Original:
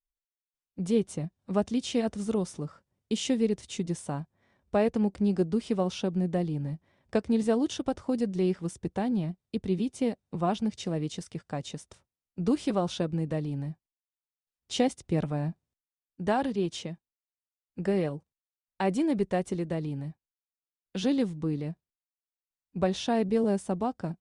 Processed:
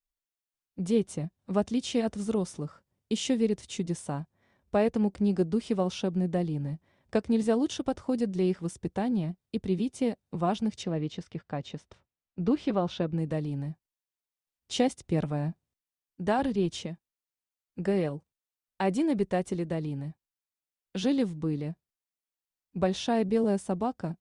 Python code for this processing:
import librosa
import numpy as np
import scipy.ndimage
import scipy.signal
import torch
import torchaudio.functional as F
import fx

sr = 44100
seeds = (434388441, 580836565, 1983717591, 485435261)

y = fx.lowpass(x, sr, hz=3700.0, slope=12, at=(10.83, 13.18))
y = fx.low_shelf(y, sr, hz=100.0, db=12.0, at=(16.39, 16.86))